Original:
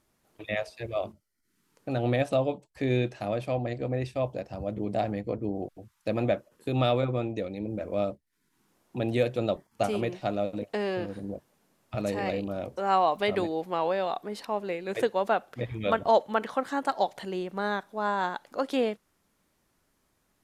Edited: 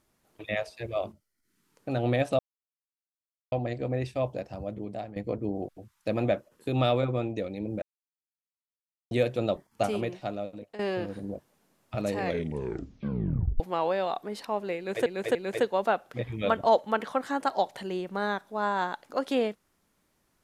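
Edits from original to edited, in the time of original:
2.39–3.52 mute
4.43–5.16 fade out, to -14.5 dB
7.82–9.11 mute
9.84–10.79 fade out, to -14 dB
12.18 tape stop 1.42 s
14.77–15.06 loop, 3 plays

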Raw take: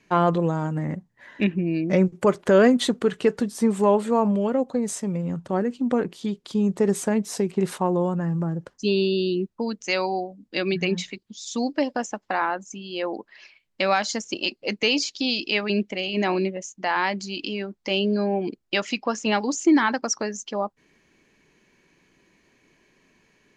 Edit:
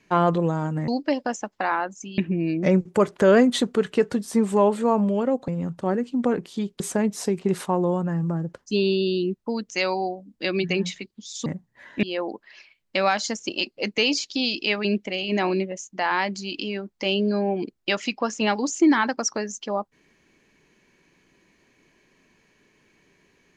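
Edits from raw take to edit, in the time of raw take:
0.88–1.45 swap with 11.58–12.88
4.75–5.15 cut
6.47–6.92 cut

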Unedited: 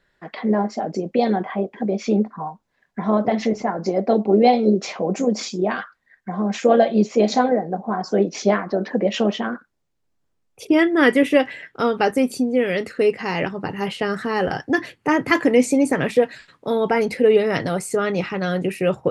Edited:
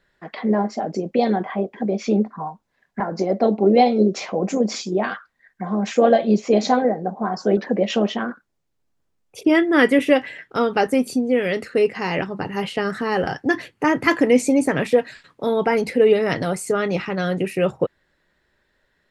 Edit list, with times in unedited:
3–3.67 cut
8.24–8.81 cut

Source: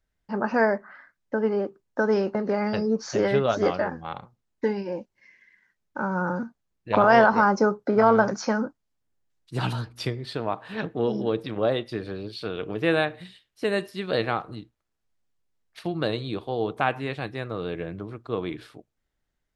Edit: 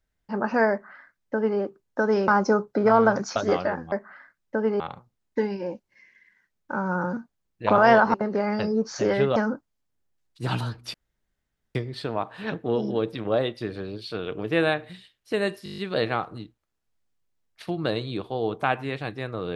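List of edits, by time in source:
0.71–1.59 copy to 4.06
2.28–3.5 swap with 7.4–8.48
10.06 insert room tone 0.81 s
13.95 stutter 0.02 s, 8 plays

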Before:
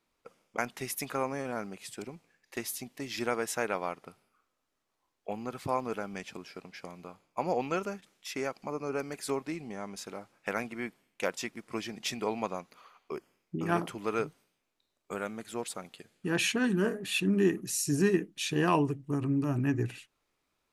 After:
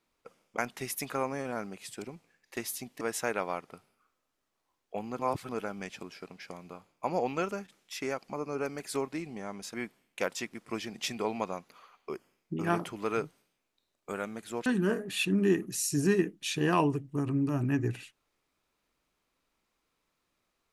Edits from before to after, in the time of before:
3.01–3.35 cut
5.53–5.83 reverse
10.08–10.76 cut
15.68–16.61 cut

